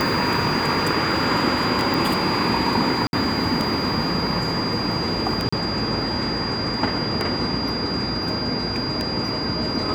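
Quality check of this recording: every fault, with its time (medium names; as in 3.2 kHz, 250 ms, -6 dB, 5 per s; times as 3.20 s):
tick 33 1/3 rpm
whine 4.8 kHz -27 dBFS
1.94 s: pop
3.07–3.13 s: dropout 61 ms
5.49–5.53 s: dropout 35 ms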